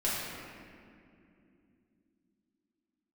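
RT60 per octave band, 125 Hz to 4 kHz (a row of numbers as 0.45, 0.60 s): 3.8, 4.5, 3.2, 2.1, 2.2, 1.4 s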